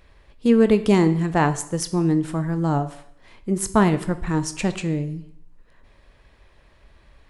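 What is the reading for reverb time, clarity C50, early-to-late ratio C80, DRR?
0.65 s, 14.0 dB, 16.5 dB, 10.0 dB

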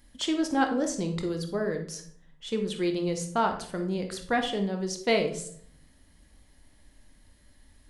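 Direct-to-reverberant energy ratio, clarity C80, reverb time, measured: 4.5 dB, 12.5 dB, 0.60 s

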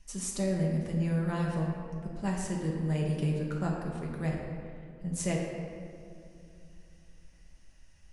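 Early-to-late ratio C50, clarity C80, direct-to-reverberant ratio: 1.5 dB, 3.0 dB, -2.5 dB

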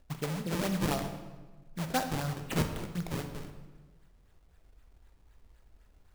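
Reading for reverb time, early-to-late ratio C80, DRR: 1.3 s, 9.5 dB, 5.5 dB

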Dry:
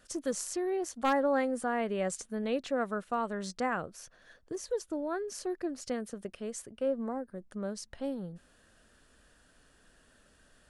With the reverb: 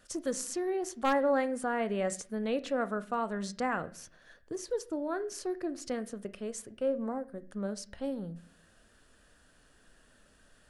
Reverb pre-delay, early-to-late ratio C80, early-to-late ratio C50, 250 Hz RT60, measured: 7 ms, 21.5 dB, 17.5 dB, 0.75 s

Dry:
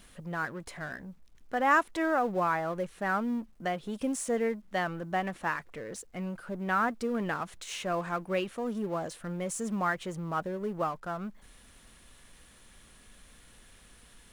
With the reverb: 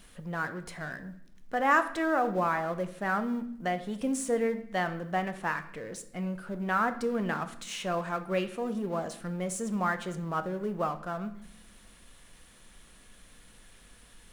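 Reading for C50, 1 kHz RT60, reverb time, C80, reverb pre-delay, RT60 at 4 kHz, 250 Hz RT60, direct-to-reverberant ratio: 13.0 dB, 0.65 s, 0.75 s, 16.0 dB, 4 ms, 0.65 s, 1.3 s, 9.0 dB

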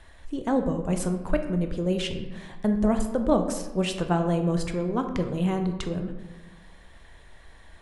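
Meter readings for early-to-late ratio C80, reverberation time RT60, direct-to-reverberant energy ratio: 10.5 dB, 1.2 s, 5.5 dB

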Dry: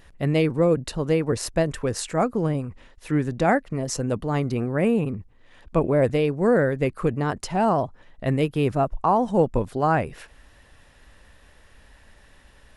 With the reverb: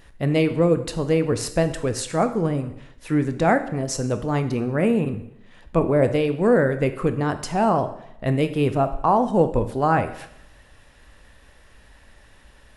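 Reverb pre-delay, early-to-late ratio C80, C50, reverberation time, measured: 7 ms, 15.0 dB, 12.0 dB, 0.80 s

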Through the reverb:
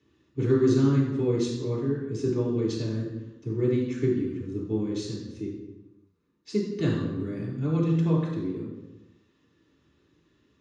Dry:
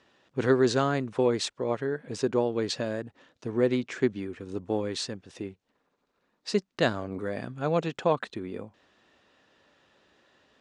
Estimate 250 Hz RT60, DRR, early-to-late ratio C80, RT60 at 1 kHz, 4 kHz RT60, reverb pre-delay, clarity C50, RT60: 1.1 s, -5.5 dB, 5.5 dB, 0.95 s, 0.75 s, 3 ms, 3.0 dB, 1.0 s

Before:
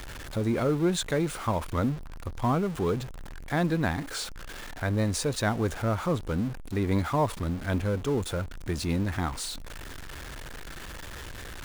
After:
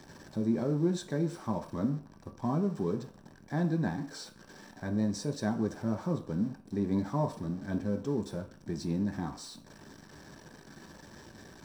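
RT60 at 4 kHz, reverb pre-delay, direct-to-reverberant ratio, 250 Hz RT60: 0.50 s, 3 ms, 3.0 dB, 0.40 s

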